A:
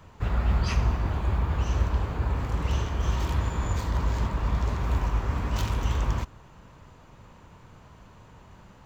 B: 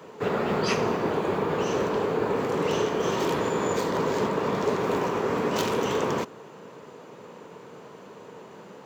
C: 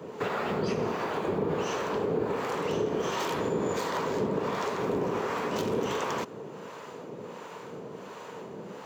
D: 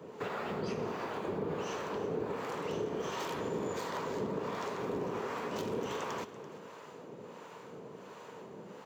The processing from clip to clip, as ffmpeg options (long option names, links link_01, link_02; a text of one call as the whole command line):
ffmpeg -i in.wav -af "highpass=frequency=170:width=0.5412,highpass=frequency=170:width=1.3066,equalizer=frequency=440:width_type=o:width=0.64:gain=13,volume=5.5dB" out.wav
ffmpeg -i in.wav -filter_complex "[0:a]acompressor=threshold=-30dB:ratio=5,acrossover=split=620[link_01][link_02];[link_01]aeval=exprs='val(0)*(1-0.7/2+0.7/2*cos(2*PI*1.4*n/s))':channel_layout=same[link_03];[link_02]aeval=exprs='val(0)*(1-0.7/2-0.7/2*cos(2*PI*1.4*n/s))':channel_layout=same[link_04];[link_03][link_04]amix=inputs=2:normalize=0,volume=6.5dB" out.wav
ffmpeg -i in.wav -af "aecho=1:1:337:0.168,volume=-7dB" out.wav